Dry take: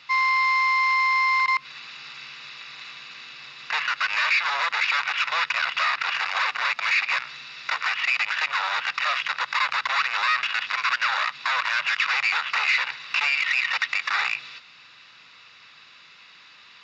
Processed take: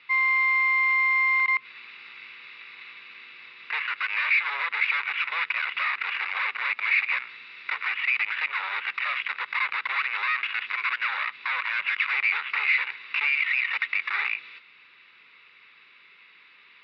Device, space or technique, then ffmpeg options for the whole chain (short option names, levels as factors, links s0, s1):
guitar cabinet: -af "highpass=110,equalizer=f=140:t=q:w=4:g=-7,equalizer=f=400:t=q:w=4:g=8,equalizer=f=680:t=q:w=4:g=-7,equalizer=f=2200:t=q:w=4:g=9,lowpass=f=3600:w=0.5412,lowpass=f=3600:w=1.3066,volume=0.473"